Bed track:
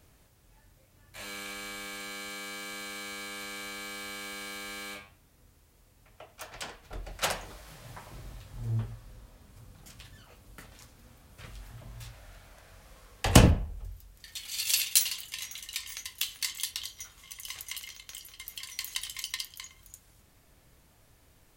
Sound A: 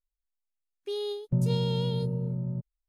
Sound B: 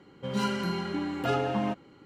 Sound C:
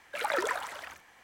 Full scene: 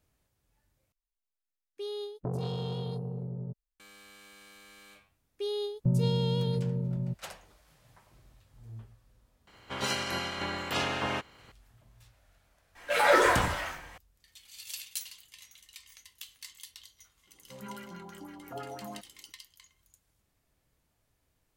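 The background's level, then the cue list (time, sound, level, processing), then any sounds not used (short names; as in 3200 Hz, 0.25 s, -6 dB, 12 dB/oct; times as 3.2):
bed track -14 dB
0.92 replace with A -4.5 dB + core saturation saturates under 390 Hz
4.53 add A -0.5 dB
9.47 add B -3 dB + spectral limiter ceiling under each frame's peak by 24 dB
12.75 add C -0.5 dB + shoebox room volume 67 m³, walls mixed, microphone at 1.8 m
17.27 add B -16 dB + LFO low-pass sine 6 Hz 740–2500 Hz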